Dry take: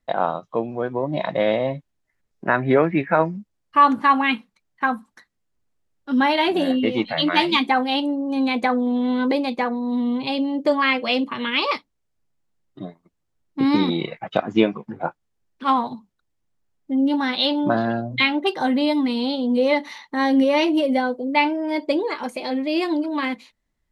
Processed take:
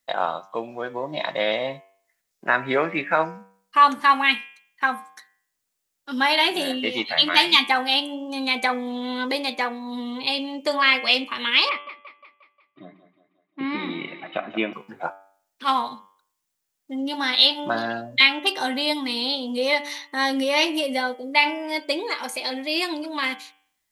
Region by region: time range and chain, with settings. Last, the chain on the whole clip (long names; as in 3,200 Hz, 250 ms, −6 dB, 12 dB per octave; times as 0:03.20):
0:11.69–0:14.73: loudspeaker in its box 140–2,500 Hz, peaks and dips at 470 Hz −8 dB, 870 Hz −8 dB, 1,500 Hz −4 dB + echo with a time of its own for lows and highs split 310 Hz, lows 114 ms, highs 178 ms, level −12 dB
whole clip: spectral tilt +4 dB per octave; hum removal 96.84 Hz, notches 36; level −1 dB